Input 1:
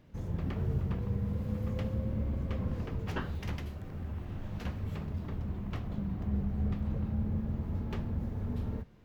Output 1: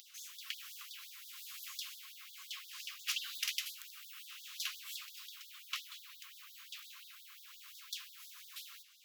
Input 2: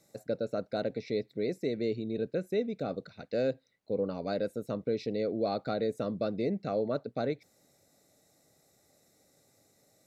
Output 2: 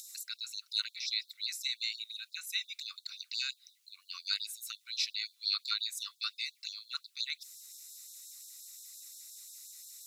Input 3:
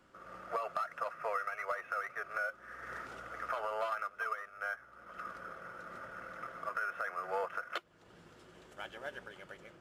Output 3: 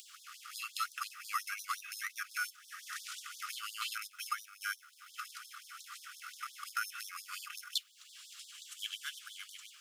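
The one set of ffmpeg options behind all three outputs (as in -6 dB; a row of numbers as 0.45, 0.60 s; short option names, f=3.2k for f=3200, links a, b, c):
-af "aexciter=amount=4.5:drive=6:freq=2.5k,acompressor=mode=upward:threshold=-48dB:ratio=2.5,afftfilt=real='re*gte(b*sr/1024,990*pow(3400/990,0.5+0.5*sin(2*PI*5.7*pts/sr)))':imag='im*gte(b*sr/1024,990*pow(3400/990,0.5+0.5*sin(2*PI*5.7*pts/sr)))':win_size=1024:overlap=0.75,volume=2dB"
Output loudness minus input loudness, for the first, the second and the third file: -8.0, -2.5, -1.5 LU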